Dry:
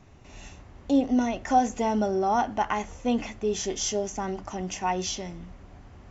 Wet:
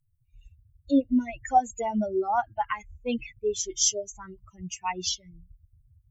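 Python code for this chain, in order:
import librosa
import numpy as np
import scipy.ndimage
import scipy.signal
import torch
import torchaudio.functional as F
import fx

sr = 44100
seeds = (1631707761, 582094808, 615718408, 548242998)

y = fx.bin_expand(x, sr, power=3.0)
y = fx.high_shelf(y, sr, hz=3700.0, db=11.0)
y = F.gain(torch.from_numpy(y), 2.5).numpy()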